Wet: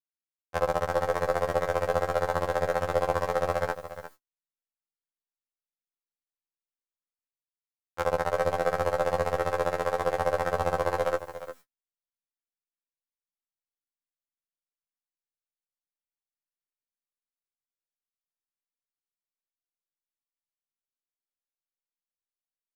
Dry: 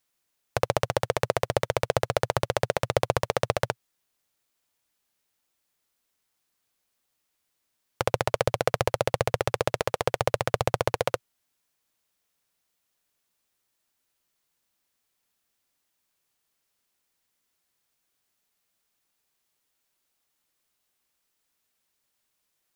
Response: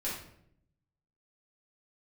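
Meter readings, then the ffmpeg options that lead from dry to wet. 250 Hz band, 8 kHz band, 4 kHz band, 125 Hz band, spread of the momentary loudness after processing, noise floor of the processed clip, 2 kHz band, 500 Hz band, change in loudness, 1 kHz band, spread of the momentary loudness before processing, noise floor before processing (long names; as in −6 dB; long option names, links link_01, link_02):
−1.5 dB, −8.0 dB, −9.0 dB, −5.5 dB, 8 LU, below −85 dBFS, −1.5 dB, 0.0 dB, −0.5 dB, +1.0 dB, 3 LU, −78 dBFS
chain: -filter_complex "[0:a]aeval=exprs='if(lt(val(0),0),0.708*val(0),val(0))':channel_layout=same,asplit=2[link_01][link_02];[link_02]alimiter=limit=-11dB:level=0:latency=1,volume=2dB[link_03];[link_01][link_03]amix=inputs=2:normalize=0,asoftclip=type=tanh:threshold=-2.5dB,areverse,acompressor=mode=upward:threshold=-36dB:ratio=2.5,areverse,highshelf=frequency=2100:width_type=q:width=1.5:gain=-6.5,aecho=1:1:3.8:0.44,aecho=1:1:354:0.237,agate=range=-50dB:threshold=-45dB:ratio=16:detection=peak,afftfilt=real='re*2*eq(mod(b,4),0)':imag='im*2*eq(mod(b,4),0)':win_size=2048:overlap=0.75,volume=-1.5dB"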